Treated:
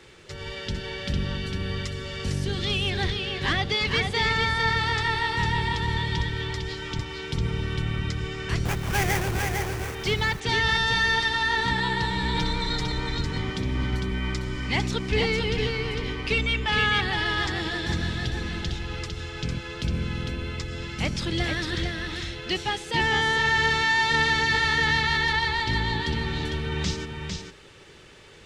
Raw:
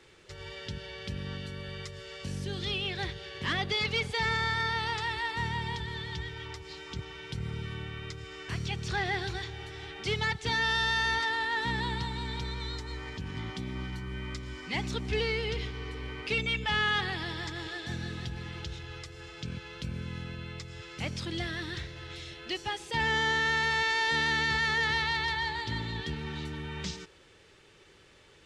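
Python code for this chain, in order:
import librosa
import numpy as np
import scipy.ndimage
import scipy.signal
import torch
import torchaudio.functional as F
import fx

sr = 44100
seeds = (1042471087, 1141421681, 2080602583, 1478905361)

p1 = fx.octave_divider(x, sr, octaves=1, level_db=-4.0)
p2 = fx.comb(p1, sr, ms=6.4, depth=0.96, at=(12.34, 12.92))
p3 = fx.rider(p2, sr, range_db=3, speed_s=0.5)
p4 = p2 + F.gain(torch.from_numpy(p3), -1.0).numpy()
p5 = fx.sample_hold(p4, sr, seeds[0], rate_hz=4100.0, jitter_pct=20, at=(8.65, 9.95))
y = p5 + fx.echo_single(p5, sr, ms=453, db=-4.5, dry=0)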